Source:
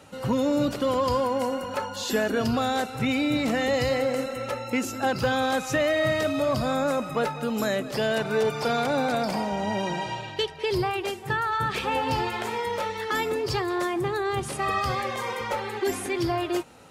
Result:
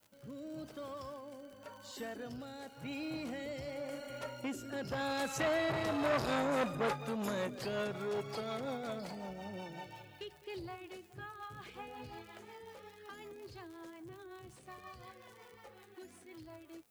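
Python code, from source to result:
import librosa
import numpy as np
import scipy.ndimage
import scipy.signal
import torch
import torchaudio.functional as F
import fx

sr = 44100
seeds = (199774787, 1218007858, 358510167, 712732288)

y = fx.doppler_pass(x, sr, speed_mps=21, closest_m=14.0, pass_at_s=6.28)
y = fx.vibrato(y, sr, rate_hz=0.34, depth_cents=14.0)
y = fx.dmg_noise_colour(y, sr, seeds[0], colour='violet', level_db=-70.0)
y = fx.rotary_switch(y, sr, hz=0.9, then_hz=5.5, switch_at_s=6.06)
y = fx.dmg_crackle(y, sr, seeds[1], per_s=63.0, level_db=-46.0)
y = fx.transformer_sat(y, sr, knee_hz=1500.0)
y = F.gain(torch.from_numpy(y), -1.0).numpy()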